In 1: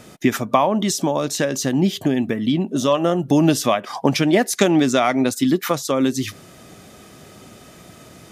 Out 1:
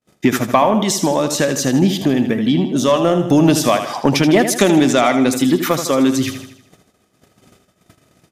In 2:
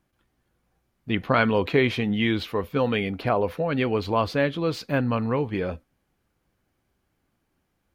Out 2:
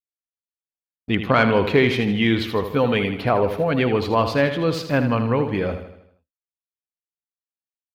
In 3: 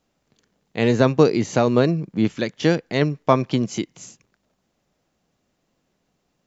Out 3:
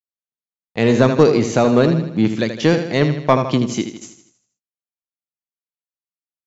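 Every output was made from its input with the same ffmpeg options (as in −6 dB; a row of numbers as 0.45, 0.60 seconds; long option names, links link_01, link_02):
-af "agate=range=-49dB:threshold=-40dB:ratio=16:detection=peak,aecho=1:1:79|158|237|316|395|474:0.335|0.167|0.0837|0.0419|0.0209|0.0105,acontrast=24,volume=-1dB"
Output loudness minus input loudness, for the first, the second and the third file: +4.0, +4.5, +4.0 LU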